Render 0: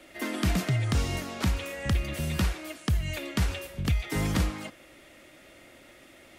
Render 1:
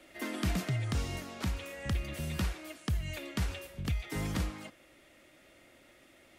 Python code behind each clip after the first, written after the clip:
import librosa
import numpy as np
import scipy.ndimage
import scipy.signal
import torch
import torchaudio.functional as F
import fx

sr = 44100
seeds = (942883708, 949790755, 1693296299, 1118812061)

y = fx.rider(x, sr, range_db=10, speed_s=2.0)
y = y * 10.0 ** (-7.0 / 20.0)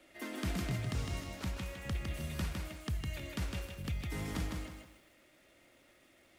y = fx.echo_crushed(x, sr, ms=157, feedback_pct=35, bits=10, wet_db=-3.5)
y = y * 10.0 ** (-5.0 / 20.0)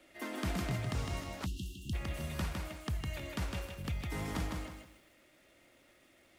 y = fx.dynamic_eq(x, sr, hz=880.0, q=0.95, threshold_db=-56.0, ratio=4.0, max_db=5)
y = fx.spec_erase(y, sr, start_s=1.46, length_s=0.47, low_hz=380.0, high_hz=2600.0)